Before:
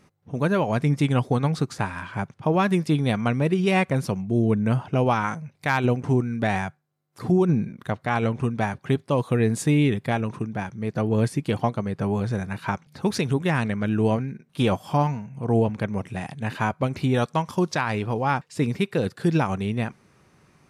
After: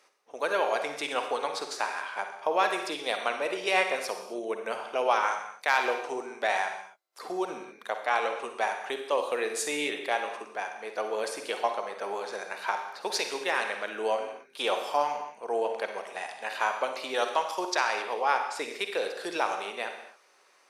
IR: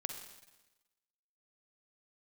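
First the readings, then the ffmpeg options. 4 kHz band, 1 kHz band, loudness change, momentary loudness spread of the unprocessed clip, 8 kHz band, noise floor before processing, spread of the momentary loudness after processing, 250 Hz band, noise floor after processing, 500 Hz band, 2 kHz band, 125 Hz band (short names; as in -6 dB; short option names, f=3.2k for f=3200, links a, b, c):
+2.0 dB, -0.5 dB, -6.0 dB, 8 LU, +1.5 dB, -63 dBFS, 9 LU, -19.0 dB, -62 dBFS, -4.0 dB, 0.0 dB, under -35 dB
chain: -filter_complex "[0:a]highpass=f=480:w=0.5412,highpass=f=480:w=1.3066,equalizer=f=4.7k:w=1.1:g=4[a];[1:a]atrim=start_sample=2205,afade=t=out:st=0.33:d=0.01,atrim=end_sample=14994[b];[a][b]afir=irnorm=-1:irlink=0"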